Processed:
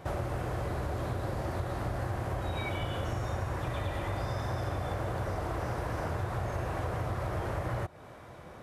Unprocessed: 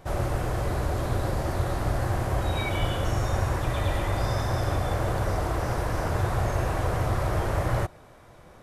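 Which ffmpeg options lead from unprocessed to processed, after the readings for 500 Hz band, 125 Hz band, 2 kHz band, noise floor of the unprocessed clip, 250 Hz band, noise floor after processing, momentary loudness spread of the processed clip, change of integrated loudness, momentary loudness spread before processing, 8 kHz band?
−6.0 dB, −7.0 dB, −6.5 dB, −51 dBFS, −6.0 dB, −49 dBFS, 1 LU, −7.0 dB, 2 LU, −10.5 dB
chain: -af "highpass=58,bass=frequency=250:gain=0,treble=frequency=4000:gain=-5,acompressor=threshold=-35dB:ratio=4,volume=3dB"

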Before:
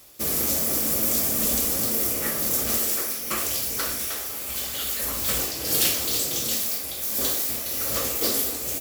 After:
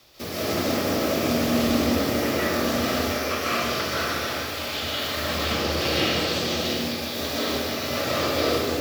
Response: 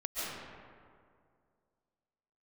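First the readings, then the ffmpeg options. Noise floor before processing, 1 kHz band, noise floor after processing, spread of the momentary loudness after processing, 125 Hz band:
−32 dBFS, +8.5 dB, −31 dBFS, 5 LU, +7.5 dB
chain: -filter_complex "[0:a]highshelf=frequency=6300:width_type=q:width=1.5:gain=-11.5,acrossover=split=2900[link_01][link_02];[link_02]acompressor=threshold=-35dB:ratio=4:attack=1:release=60[link_03];[link_01][link_03]amix=inputs=2:normalize=0,afreqshift=18[link_04];[1:a]atrim=start_sample=2205[link_05];[link_04][link_05]afir=irnorm=-1:irlink=0,volume=3dB"

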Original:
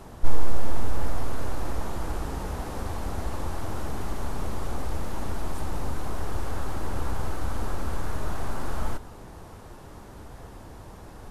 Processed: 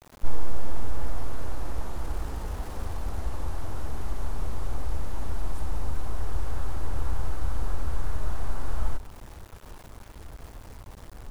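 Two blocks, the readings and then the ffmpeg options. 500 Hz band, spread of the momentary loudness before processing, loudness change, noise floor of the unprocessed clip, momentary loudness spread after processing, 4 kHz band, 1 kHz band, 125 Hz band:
−5.5 dB, 12 LU, −2.0 dB, −45 dBFS, 13 LU, can't be measured, −5.0 dB, −0.5 dB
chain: -af "asubboost=boost=2.5:cutoff=100,aeval=exprs='val(0)*gte(abs(val(0)),0.0119)':channel_layout=same,volume=-5dB"

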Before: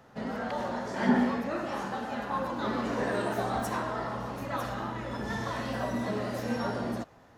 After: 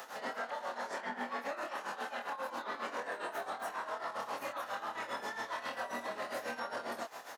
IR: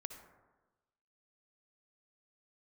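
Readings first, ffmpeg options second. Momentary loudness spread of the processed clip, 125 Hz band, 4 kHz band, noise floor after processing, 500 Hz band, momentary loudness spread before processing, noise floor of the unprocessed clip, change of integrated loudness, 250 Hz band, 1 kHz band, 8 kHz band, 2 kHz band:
1 LU, below −25 dB, −3.5 dB, −49 dBFS, −8.5 dB, 7 LU, −56 dBFS, −7.5 dB, −19.5 dB, −5.0 dB, −4.0 dB, −3.0 dB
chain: -filter_complex "[0:a]highpass=650,acrossover=split=3100[link_01][link_02];[link_02]acompressor=threshold=-58dB:ratio=4:attack=1:release=60[link_03];[link_01][link_03]amix=inputs=2:normalize=0,highshelf=frequency=5100:gain=10,acompressor=threshold=-44dB:ratio=6,alimiter=level_in=20dB:limit=-24dB:level=0:latency=1:release=12,volume=-20dB,tremolo=f=7.4:d=0.8,asplit=2[link_04][link_05];[link_05]adelay=25,volume=-5dB[link_06];[link_04][link_06]amix=inputs=2:normalize=0,volume=14dB"

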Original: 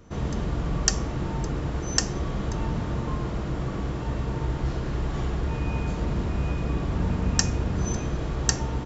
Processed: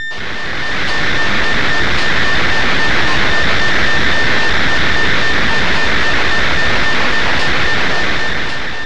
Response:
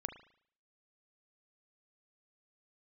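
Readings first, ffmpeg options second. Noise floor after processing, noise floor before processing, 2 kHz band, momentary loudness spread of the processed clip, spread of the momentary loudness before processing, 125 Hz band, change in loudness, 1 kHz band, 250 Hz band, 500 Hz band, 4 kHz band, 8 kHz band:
−17 dBFS, −31 dBFS, +28.5 dB, 4 LU, 5 LU, +2.5 dB, +14.5 dB, +17.5 dB, +7.0 dB, +12.5 dB, +19.5 dB, can't be measured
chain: -filter_complex "[0:a]acrossover=split=460[link_01][link_02];[link_01]aeval=exprs='val(0)*(1-1/2+1/2*cos(2*PI*3.7*n/s))':channel_layout=same[link_03];[link_02]aeval=exprs='val(0)*(1-1/2-1/2*cos(2*PI*3.7*n/s))':channel_layout=same[link_04];[link_03][link_04]amix=inputs=2:normalize=0,aeval=exprs='val(0)+0.02*sin(2*PI*1800*n/s)':channel_layout=same,aresample=11025,aeval=exprs='0.2*sin(PI/2*10*val(0)/0.2)':channel_layout=same,aresample=44100,dynaudnorm=framelen=130:gausssize=11:maxgain=12dB,aeval=exprs='max(val(0),0)':channel_layout=same,lowpass=4200,asplit=2[link_05][link_06];[1:a]atrim=start_sample=2205,lowpass=frequency=1900:width=0.5412,lowpass=frequency=1900:width=1.3066,adelay=125[link_07];[link_06][link_07]afir=irnorm=-1:irlink=0,volume=-5.5dB[link_08];[link_05][link_08]amix=inputs=2:normalize=0,volume=-1dB"

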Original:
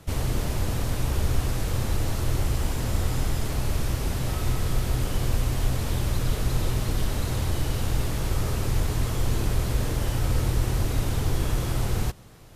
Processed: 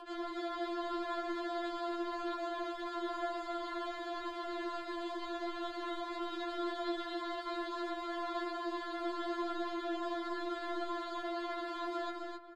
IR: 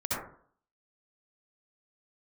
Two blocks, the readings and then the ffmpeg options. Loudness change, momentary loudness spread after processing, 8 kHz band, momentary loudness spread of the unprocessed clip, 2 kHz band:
−11.5 dB, 3 LU, −27.0 dB, 2 LU, −6.0 dB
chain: -filter_complex "[0:a]equalizer=frequency=110:width_type=o:width=1.8:gain=-8.5,aecho=1:1:2.6:0.82,asplit=2[link_01][link_02];[1:a]atrim=start_sample=2205,asetrate=66150,aresample=44100,adelay=106[link_03];[link_02][link_03]afir=irnorm=-1:irlink=0,volume=-19dB[link_04];[link_01][link_04]amix=inputs=2:normalize=0,adynamicsmooth=sensitivity=8:basefreq=2900,acrossover=split=310 4200:gain=0.0891 1 0.1[link_05][link_06][link_07];[link_05][link_06][link_07]amix=inputs=3:normalize=0,aecho=1:1:202|258:0.251|0.708,afreqshift=-120,acompressor=mode=upward:threshold=-36dB:ratio=2.5,afftfilt=real='re*4*eq(mod(b,16),0)':imag='im*4*eq(mod(b,16),0)':win_size=2048:overlap=0.75,volume=-4dB"

